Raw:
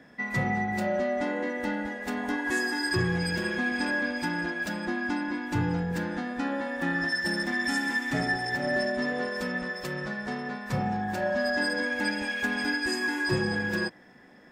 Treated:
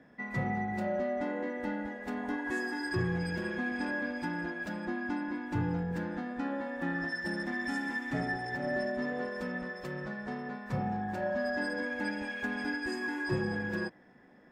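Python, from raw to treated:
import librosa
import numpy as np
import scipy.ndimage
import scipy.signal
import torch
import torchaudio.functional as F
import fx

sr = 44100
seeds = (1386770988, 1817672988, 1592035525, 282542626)

y = fx.high_shelf(x, sr, hz=2600.0, db=-11.0)
y = y * 10.0 ** (-4.0 / 20.0)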